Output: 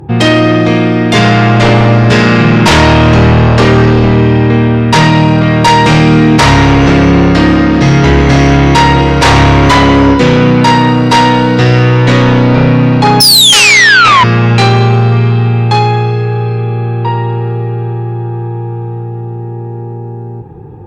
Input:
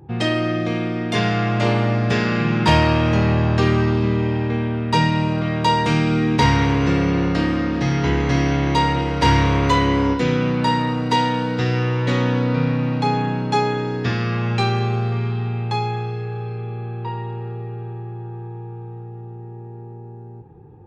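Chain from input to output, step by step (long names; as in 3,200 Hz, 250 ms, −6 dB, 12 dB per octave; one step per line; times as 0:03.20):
sound drawn into the spectrogram fall, 0:13.20–0:14.24, 960–5,400 Hz −14 dBFS
sine wavefolder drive 10 dB, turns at −3 dBFS
level +1.5 dB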